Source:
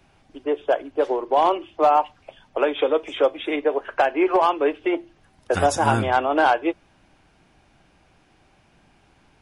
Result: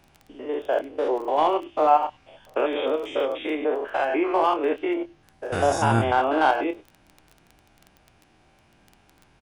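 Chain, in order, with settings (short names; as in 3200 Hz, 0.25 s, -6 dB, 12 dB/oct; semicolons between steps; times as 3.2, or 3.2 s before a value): stepped spectrum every 0.1 s; doubler 26 ms -9 dB; crackle 12/s -34 dBFS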